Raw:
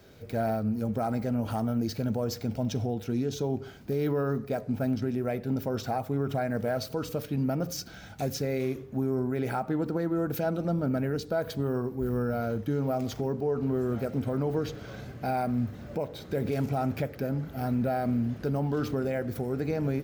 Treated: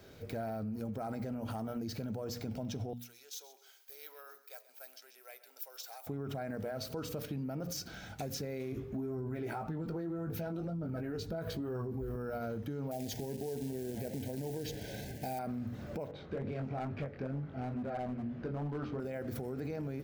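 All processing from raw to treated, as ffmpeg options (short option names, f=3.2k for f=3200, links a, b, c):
-filter_complex "[0:a]asettb=1/sr,asplit=3[a][b][c];[a]atrim=end=2.934[d];[b]atrim=start=2.93:end=6.07,asetpts=PTS-STARTPTS,afade=t=in:d=0.004:c=qsin,afade=t=out:st=3.136:d=0.004:c=qsin,highpass=f=450:w=0.5412,highpass=f=450:w=1.3066,aderivative,aecho=1:1:132|264|396:0.158|0.0523|0.0173,atrim=end_sample=138474[e];[c]atrim=start=6.066[f];[d][e]acrossfade=d=0.004:c1=hsin:c2=qsin[g];[g][f]acrossfade=d=0.004:c1=qsin:c2=hsin,asettb=1/sr,asplit=3[h][i][j];[h]atrim=end=8.724[k];[i]atrim=start=8.72:end=12.16,asetpts=PTS-STARTPTS,afade=t=in:d=0.004:c=qsin,afade=t=out:st=3.436:d=0.004:c=qsin,bass=f=250:g=5,treble=f=4k:g=-3,aphaser=in_gain=1:out_gain=1:delay=3.3:decay=0.41:speed=1.9:type=triangular,asplit=2[l][m];[m]adelay=18,volume=-5.5dB[n];[l][n]amix=inputs=2:normalize=0,atrim=end_sample=151704[o];[j]atrim=start=12.156[p];[k][o]acrossfade=d=0.004:c1=hsin:c2=qsin[q];[q][p]acrossfade=d=0.004:c1=qsin:c2=hsin,asettb=1/sr,asplit=3[r][s][t];[r]atrim=end=12.914[u];[s]atrim=start=12.91:end=15.39,asetpts=PTS-STARTPTS,afade=t=in:d=0.004:c=qsin,afade=t=out:st=2.476:d=0.004:c=qsin,acrusher=bits=5:mode=log:mix=0:aa=0.000001,asuperstop=centerf=1200:order=8:qfactor=1.9,highshelf=f=5.2k:g=9.5[v];[t]atrim=start=15.386[w];[u][v]acrossfade=d=0.004:c1=hsin:c2=qsin[x];[x][w]acrossfade=d=0.004:c1=qsin:c2=hsin,asettb=1/sr,asplit=3[y][z][aa];[y]atrim=end=16.114[ab];[z]atrim=start=16.11:end=19,asetpts=PTS-STARTPTS,afade=t=in:d=0.004:c=qsin,afade=t=out:st=2.886:d=0.004:c=qsin,lowpass=2.8k,flanger=delay=20:depth=4.2:speed=2.3,asoftclip=type=hard:threshold=-27dB[ac];[aa]atrim=start=18.996[ad];[ab][ac]acrossfade=d=0.004:c1=hsin:c2=qsin[ae];[ae][ad]acrossfade=d=0.004:c1=qsin:c2=hsin,bandreject=f=60:t=h:w=6,bandreject=f=120:t=h:w=6,bandreject=f=180:t=h:w=6,bandreject=f=240:t=h:w=6,alimiter=level_in=2dB:limit=-24dB:level=0:latency=1,volume=-2dB,acompressor=threshold=-34dB:ratio=6,volume=-1dB"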